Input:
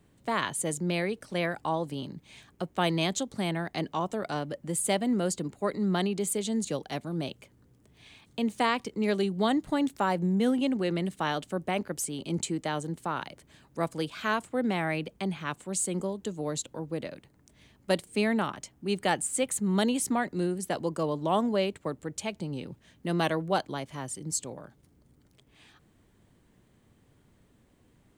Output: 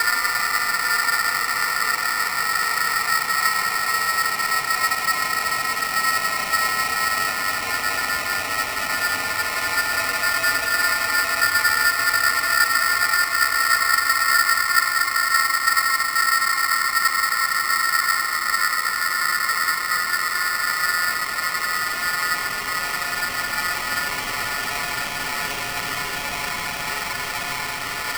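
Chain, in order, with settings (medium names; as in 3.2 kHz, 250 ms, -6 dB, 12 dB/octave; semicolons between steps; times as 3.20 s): spectrogram pixelated in time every 200 ms; Paulstretch 13×, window 1.00 s, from 9.35 s; polarity switched at an audio rate 1.6 kHz; trim +8 dB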